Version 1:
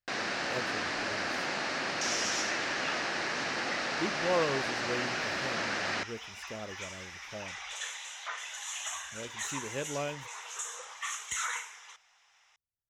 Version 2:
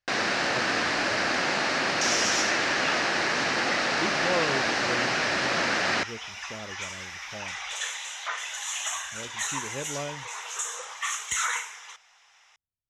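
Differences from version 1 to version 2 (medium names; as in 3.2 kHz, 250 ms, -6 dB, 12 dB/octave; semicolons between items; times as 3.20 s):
speech: add tone controls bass +3 dB, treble -10 dB; first sound +7.5 dB; second sound +6.5 dB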